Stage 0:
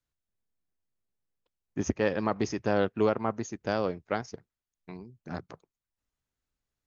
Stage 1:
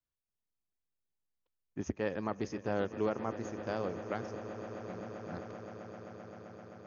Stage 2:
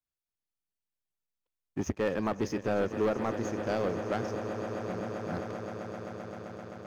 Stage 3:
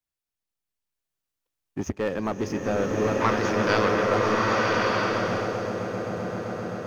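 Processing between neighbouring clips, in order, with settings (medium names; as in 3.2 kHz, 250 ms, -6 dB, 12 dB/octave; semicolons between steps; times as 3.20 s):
treble shelf 5.4 kHz -8 dB; echo with a slow build-up 130 ms, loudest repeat 8, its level -17.5 dB; trim -7.5 dB
waveshaping leveller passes 2
time-frequency box 3.21–4.07 s, 870–6000 Hz +12 dB; swelling reverb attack 1220 ms, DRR -3 dB; trim +2.5 dB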